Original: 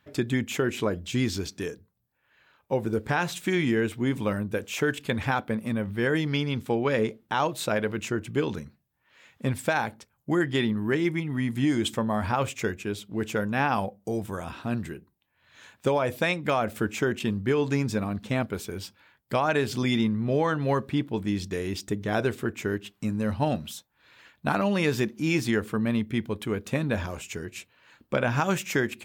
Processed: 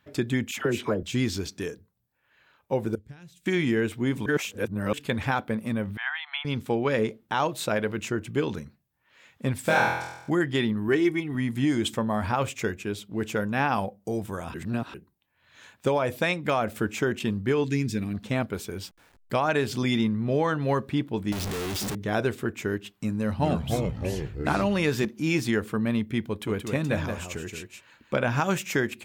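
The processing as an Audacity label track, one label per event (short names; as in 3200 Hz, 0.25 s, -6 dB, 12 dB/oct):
0.510000	1.030000	dispersion lows, late by 64 ms, half as late at 1100 Hz
2.950000	3.460000	passive tone stack bass-middle-treble 10-0-1
4.260000	4.930000	reverse
5.970000	6.450000	brick-wall FIR band-pass 670–4200 Hz
9.640000	10.300000	flutter echo walls apart 4.1 m, dies away in 0.87 s
10.880000	11.350000	comb 2.7 ms, depth 58%
14.540000	14.940000	reverse
17.640000	18.140000	band shelf 840 Hz -14.5 dB
18.830000	19.330000	level-crossing sampler step -53 dBFS
21.320000	21.950000	infinite clipping
23.150000	25.050000	echoes that change speed 0.235 s, each echo -4 st, echoes 3
26.290000	28.140000	echo 0.176 s -6 dB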